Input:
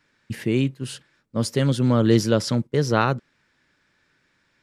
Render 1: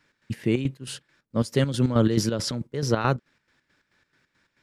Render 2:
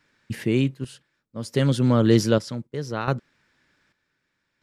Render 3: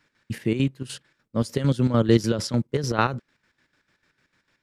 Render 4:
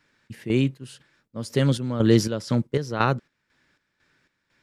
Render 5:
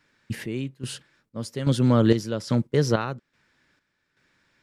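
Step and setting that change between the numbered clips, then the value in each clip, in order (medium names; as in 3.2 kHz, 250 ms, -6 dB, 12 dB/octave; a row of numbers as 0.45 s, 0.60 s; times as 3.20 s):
square tremolo, rate: 4.6 Hz, 0.65 Hz, 6.7 Hz, 2 Hz, 1.2 Hz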